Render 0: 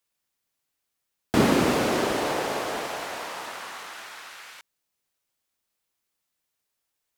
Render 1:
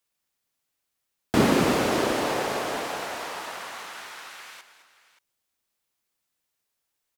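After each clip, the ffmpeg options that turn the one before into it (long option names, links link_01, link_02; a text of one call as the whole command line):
ffmpeg -i in.wav -af "aecho=1:1:213|578:0.237|0.15" out.wav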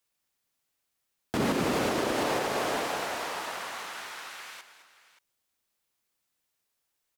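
ffmpeg -i in.wav -af "alimiter=limit=-18dB:level=0:latency=1:release=142" out.wav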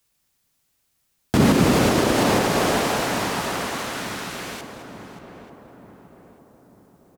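ffmpeg -i in.wav -filter_complex "[0:a]bass=frequency=250:gain=9,treble=frequency=4000:gain=3,asplit=2[link_01][link_02];[link_02]adelay=888,lowpass=frequency=1100:poles=1,volume=-10dB,asplit=2[link_03][link_04];[link_04]adelay=888,lowpass=frequency=1100:poles=1,volume=0.52,asplit=2[link_05][link_06];[link_06]adelay=888,lowpass=frequency=1100:poles=1,volume=0.52,asplit=2[link_07][link_08];[link_08]adelay=888,lowpass=frequency=1100:poles=1,volume=0.52,asplit=2[link_09][link_10];[link_10]adelay=888,lowpass=frequency=1100:poles=1,volume=0.52,asplit=2[link_11][link_12];[link_12]adelay=888,lowpass=frequency=1100:poles=1,volume=0.52[link_13];[link_01][link_03][link_05][link_07][link_09][link_11][link_13]amix=inputs=7:normalize=0,volume=7.5dB" out.wav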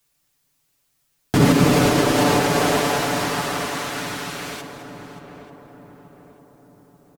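ffmpeg -i in.wav -af "aecho=1:1:6.9:0.65" out.wav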